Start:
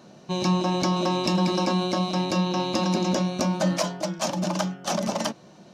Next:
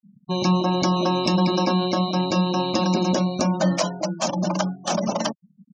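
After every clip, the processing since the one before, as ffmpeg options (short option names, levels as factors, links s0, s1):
-af "afftfilt=real='re*gte(hypot(re,im),0.0251)':imag='im*gte(hypot(re,im),0.0251)':win_size=1024:overlap=0.75,volume=1.41"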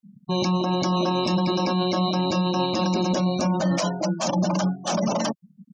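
-af "alimiter=limit=0.112:level=0:latency=1:release=16,volume=1.5"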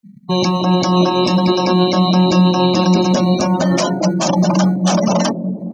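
-filter_complex "[0:a]acrossover=split=100|460|2000[s0][s1][s2][s3];[s0]acrusher=samples=21:mix=1:aa=0.000001[s4];[s1]aecho=1:1:200|460|798|1237|1809:0.631|0.398|0.251|0.158|0.1[s5];[s4][s5][s2][s3]amix=inputs=4:normalize=0,volume=2.51"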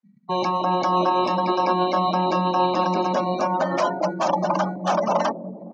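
-af "bandpass=f=1000:t=q:w=1.1:csg=0"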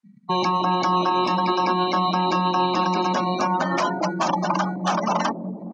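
-filter_complex "[0:a]equalizer=f=570:t=o:w=0.71:g=-9,acrossover=split=410|1200[s0][s1][s2];[s0]acompressor=threshold=0.0282:ratio=4[s3];[s1]acompressor=threshold=0.0355:ratio=4[s4];[s2]acompressor=threshold=0.0282:ratio=4[s5];[s3][s4][s5]amix=inputs=3:normalize=0,aresample=22050,aresample=44100,volume=1.88"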